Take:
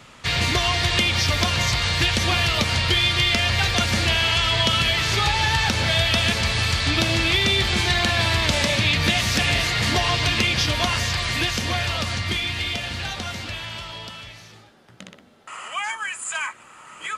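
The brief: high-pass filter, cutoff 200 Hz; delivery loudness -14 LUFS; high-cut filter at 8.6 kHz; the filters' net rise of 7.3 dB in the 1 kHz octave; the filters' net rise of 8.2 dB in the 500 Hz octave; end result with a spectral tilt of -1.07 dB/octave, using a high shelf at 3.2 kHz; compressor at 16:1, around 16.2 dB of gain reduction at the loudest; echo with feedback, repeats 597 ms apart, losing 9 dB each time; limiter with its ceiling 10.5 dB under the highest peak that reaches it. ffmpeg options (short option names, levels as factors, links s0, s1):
-af "highpass=200,lowpass=8600,equalizer=f=500:t=o:g=9,equalizer=f=1000:t=o:g=5.5,highshelf=f=3200:g=8.5,acompressor=threshold=0.0398:ratio=16,alimiter=level_in=1.26:limit=0.0631:level=0:latency=1,volume=0.794,aecho=1:1:597|1194|1791|2388:0.355|0.124|0.0435|0.0152,volume=8.91"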